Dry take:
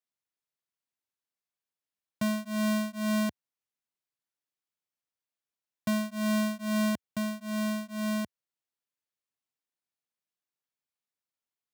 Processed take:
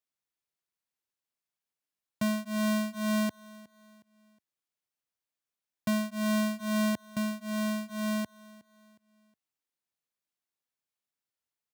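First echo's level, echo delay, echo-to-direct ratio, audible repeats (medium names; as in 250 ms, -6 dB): -21.0 dB, 364 ms, -20.5 dB, 2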